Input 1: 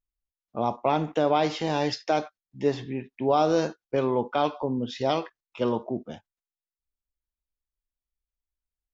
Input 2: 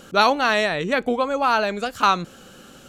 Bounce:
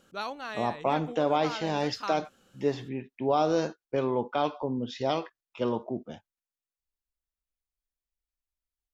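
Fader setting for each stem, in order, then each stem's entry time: -3.0, -18.5 dB; 0.00, 0.00 s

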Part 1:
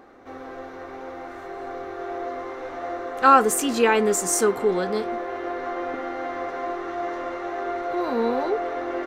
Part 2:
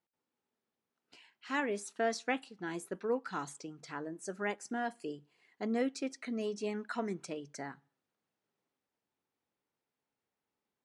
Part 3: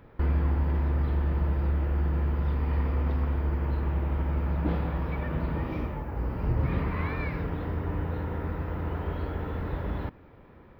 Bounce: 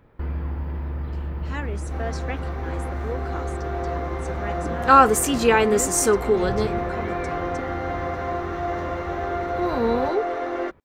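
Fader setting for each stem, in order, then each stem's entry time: +1.5, +0.5, -3.0 dB; 1.65, 0.00, 0.00 s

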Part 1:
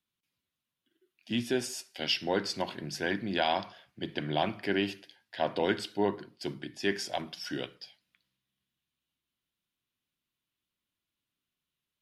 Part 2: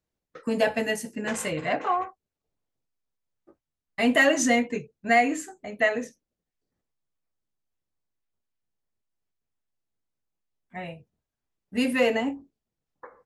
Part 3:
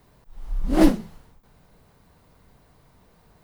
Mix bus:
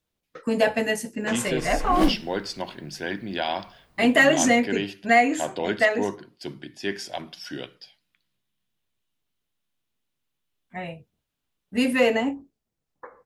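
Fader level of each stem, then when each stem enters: +1.0, +2.5, -5.0 dB; 0.00, 0.00, 1.20 s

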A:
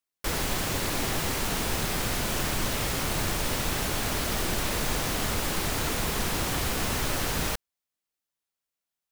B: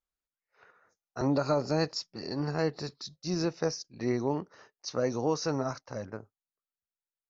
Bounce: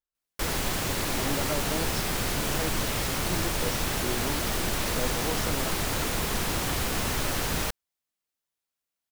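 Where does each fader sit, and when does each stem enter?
0.0, -5.5 dB; 0.15, 0.00 s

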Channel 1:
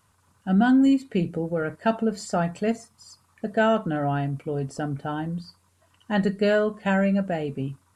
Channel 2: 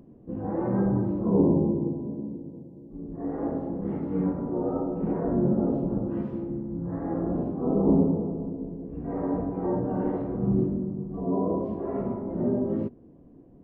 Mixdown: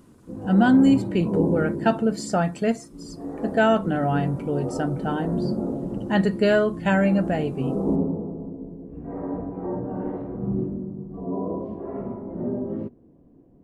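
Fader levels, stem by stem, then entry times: +2.0, -2.0 dB; 0.00, 0.00 s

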